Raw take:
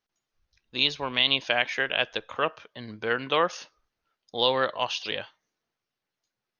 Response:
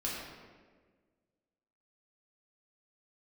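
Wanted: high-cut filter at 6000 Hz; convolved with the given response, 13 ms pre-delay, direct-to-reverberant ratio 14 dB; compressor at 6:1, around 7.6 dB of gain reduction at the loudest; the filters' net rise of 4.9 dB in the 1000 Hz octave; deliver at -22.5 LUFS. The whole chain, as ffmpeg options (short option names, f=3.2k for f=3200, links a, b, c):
-filter_complex "[0:a]lowpass=6k,equalizer=f=1k:t=o:g=6,acompressor=threshold=-24dB:ratio=6,asplit=2[a][b];[1:a]atrim=start_sample=2205,adelay=13[c];[b][c]afir=irnorm=-1:irlink=0,volume=-18dB[d];[a][d]amix=inputs=2:normalize=0,volume=8dB"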